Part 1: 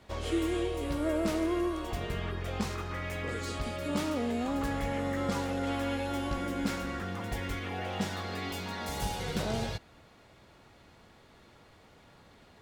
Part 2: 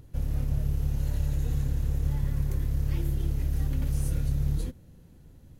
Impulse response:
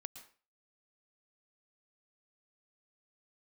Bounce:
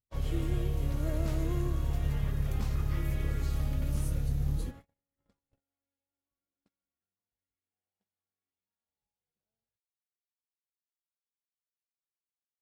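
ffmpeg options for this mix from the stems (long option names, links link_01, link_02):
-filter_complex "[0:a]volume=-9dB,afade=type=out:start_time=3.44:duration=0.74:silence=0.251189[link_01];[1:a]volume=-3.5dB[link_02];[link_01][link_02]amix=inputs=2:normalize=0,agate=range=-43dB:threshold=-45dB:ratio=16:detection=peak"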